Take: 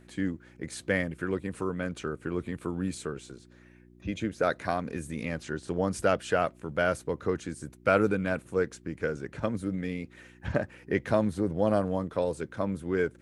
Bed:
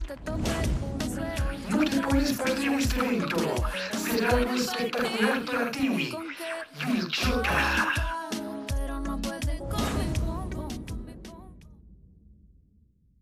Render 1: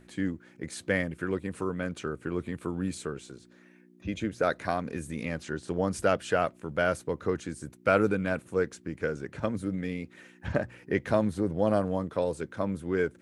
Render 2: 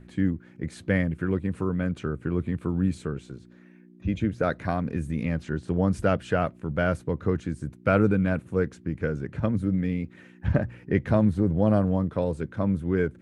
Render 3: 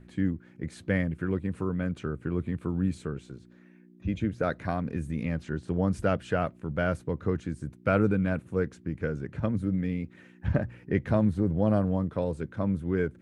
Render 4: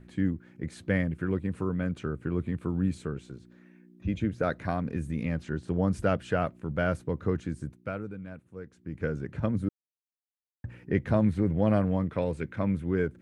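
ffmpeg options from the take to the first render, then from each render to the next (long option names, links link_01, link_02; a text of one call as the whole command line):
ffmpeg -i in.wav -af "bandreject=frequency=60:width_type=h:width=4,bandreject=frequency=120:width_type=h:width=4" out.wav
ffmpeg -i in.wav -af "bass=frequency=250:gain=11,treble=frequency=4000:gain=-8" out.wav
ffmpeg -i in.wav -af "volume=-3dB" out.wav
ffmpeg -i in.wav -filter_complex "[0:a]asettb=1/sr,asplit=3[link_01][link_02][link_03];[link_01]atrim=end=11.244[link_04];[link_02]atrim=start=11.24:end=12.85,asetpts=PTS-STARTPTS,afade=type=in:duration=0.004:curve=qsin,afade=type=out:start_time=1.606:duration=0.004:curve=qsin,equalizer=frequency=2200:width_type=o:width=0.76:gain=10.5[link_05];[link_03]atrim=start=12.846[link_06];[link_04][link_05]acrossfade=duration=0.004:curve1=hsin:curve2=qsin[link_07];[link_07][link_06]acrossfade=duration=0.004:curve1=qsin:curve2=hsin,asplit=5[link_08][link_09][link_10][link_11][link_12];[link_08]atrim=end=8.08,asetpts=PTS-STARTPTS,afade=type=out:start_time=7.64:duration=0.44:curve=qua:silence=0.188365[link_13];[link_09]atrim=start=8.08:end=8.6,asetpts=PTS-STARTPTS,volume=-14.5dB[link_14];[link_10]atrim=start=8.6:end=9.69,asetpts=PTS-STARTPTS,afade=type=in:duration=0.44:curve=qua:silence=0.188365,afade=type=out:start_time=1.086:duration=0.004:curve=hsin[link_15];[link_11]atrim=start=9.69:end=10.64,asetpts=PTS-STARTPTS,volume=0[link_16];[link_12]atrim=start=10.64,asetpts=PTS-STARTPTS,afade=type=in:duration=0.004:curve=hsin[link_17];[link_13][link_14][link_15][link_16][link_17]concat=n=5:v=0:a=1" out.wav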